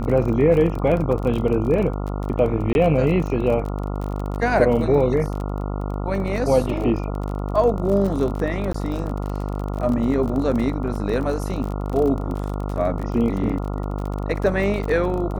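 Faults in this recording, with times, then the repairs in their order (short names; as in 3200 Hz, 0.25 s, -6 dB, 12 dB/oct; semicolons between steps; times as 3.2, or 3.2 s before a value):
buzz 50 Hz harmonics 28 -26 dBFS
crackle 31/s -27 dBFS
2.73–2.75 gap 21 ms
8.73–8.74 gap 14 ms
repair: de-click; de-hum 50 Hz, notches 28; interpolate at 2.73, 21 ms; interpolate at 8.73, 14 ms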